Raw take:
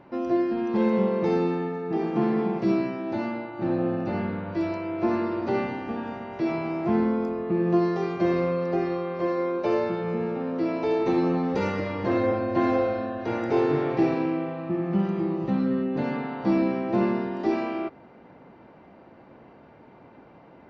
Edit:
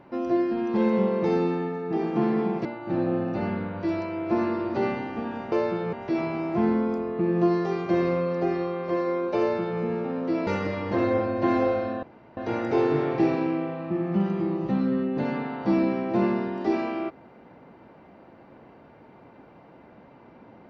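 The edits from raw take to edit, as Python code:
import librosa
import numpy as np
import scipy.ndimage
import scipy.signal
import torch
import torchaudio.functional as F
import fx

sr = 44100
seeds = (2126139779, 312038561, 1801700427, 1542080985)

y = fx.edit(x, sr, fx.cut(start_s=2.65, length_s=0.72),
    fx.duplicate(start_s=9.7, length_s=0.41, to_s=6.24),
    fx.cut(start_s=10.78, length_s=0.82),
    fx.insert_room_tone(at_s=13.16, length_s=0.34), tone=tone)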